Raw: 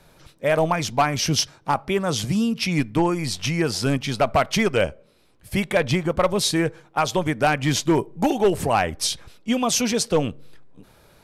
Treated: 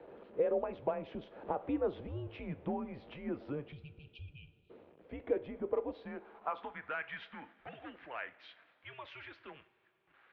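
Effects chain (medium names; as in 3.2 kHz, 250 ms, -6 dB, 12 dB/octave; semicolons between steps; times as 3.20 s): jump at every zero crossing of -37 dBFS; Doppler pass-by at 2.36 s, 11 m/s, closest 5 m; spectral selection erased 4.06–5.12 s, 290–2300 Hz; compression 5:1, threshold -38 dBFS, peak gain reduction 17.5 dB; band-pass sweep 550 Hz -> 1.7 kHz, 6.16–7.65 s; mistuned SSB -130 Hz 210–3300 Hz; speed mistake 44.1 kHz file played as 48 kHz; two-slope reverb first 0.38 s, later 3.6 s, from -18 dB, DRR 12 dB; trim +11 dB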